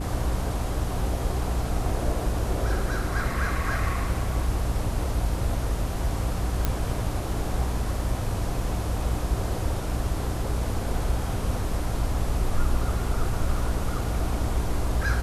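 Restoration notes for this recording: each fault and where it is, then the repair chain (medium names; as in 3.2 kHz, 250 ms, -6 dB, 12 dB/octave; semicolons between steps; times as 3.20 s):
hum 60 Hz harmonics 5 -30 dBFS
6.65 s: pop -9 dBFS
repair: de-click; de-hum 60 Hz, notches 5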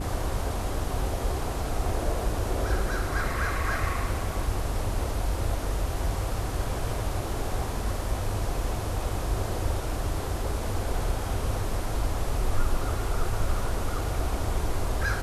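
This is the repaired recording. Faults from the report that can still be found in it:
nothing left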